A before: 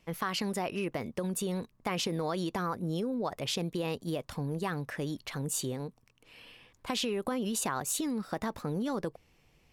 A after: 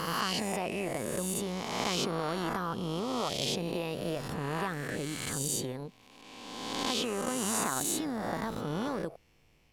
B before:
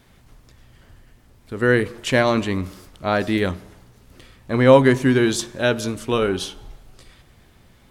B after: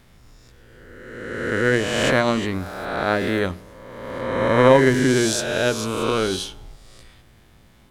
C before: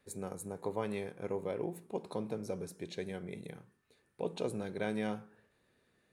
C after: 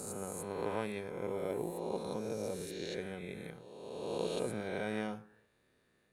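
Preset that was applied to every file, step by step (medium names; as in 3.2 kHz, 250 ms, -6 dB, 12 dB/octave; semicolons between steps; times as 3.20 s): reverse spectral sustain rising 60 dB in 1.71 s; AM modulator 110 Hz, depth 20%; trim -2 dB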